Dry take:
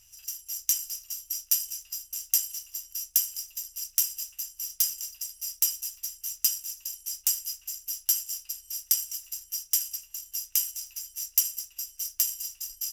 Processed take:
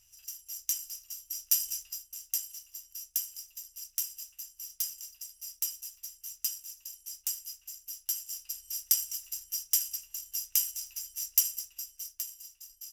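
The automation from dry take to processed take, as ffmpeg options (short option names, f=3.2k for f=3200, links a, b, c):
-af "volume=7.5dB,afade=t=in:st=1.3:d=0.43:silence=0.446684,afade=t=out:st=1.73:d=0.32:silence=0.354813,afade=t=in:st=8.15:d=0.48:silence=0.473151,afade=t=out:st=11.5:d=0.75:silence=0.281838"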